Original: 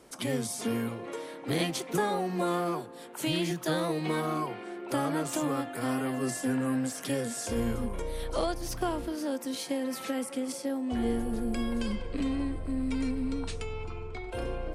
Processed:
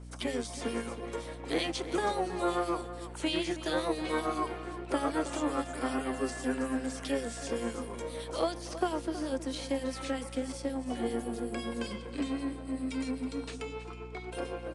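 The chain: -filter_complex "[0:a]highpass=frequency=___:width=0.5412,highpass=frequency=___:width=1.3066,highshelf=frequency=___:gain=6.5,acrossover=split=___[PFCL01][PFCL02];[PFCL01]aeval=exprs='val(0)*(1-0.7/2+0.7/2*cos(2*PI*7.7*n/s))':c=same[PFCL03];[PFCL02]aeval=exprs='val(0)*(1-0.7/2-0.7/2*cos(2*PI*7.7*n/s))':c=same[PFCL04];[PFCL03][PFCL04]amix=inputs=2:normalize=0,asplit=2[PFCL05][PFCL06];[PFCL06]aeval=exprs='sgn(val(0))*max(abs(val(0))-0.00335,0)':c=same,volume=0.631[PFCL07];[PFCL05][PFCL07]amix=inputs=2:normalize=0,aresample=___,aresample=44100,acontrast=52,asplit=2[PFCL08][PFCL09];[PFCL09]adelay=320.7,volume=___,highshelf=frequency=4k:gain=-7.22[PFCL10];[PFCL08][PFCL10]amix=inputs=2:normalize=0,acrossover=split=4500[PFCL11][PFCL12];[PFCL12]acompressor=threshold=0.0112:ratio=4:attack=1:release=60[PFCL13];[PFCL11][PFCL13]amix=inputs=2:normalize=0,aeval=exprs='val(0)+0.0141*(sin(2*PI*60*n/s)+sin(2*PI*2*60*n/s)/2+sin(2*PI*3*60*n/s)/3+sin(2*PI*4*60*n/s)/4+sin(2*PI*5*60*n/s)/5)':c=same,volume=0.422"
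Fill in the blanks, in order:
260, 260, 5.8k, 2500, 22050, 0.224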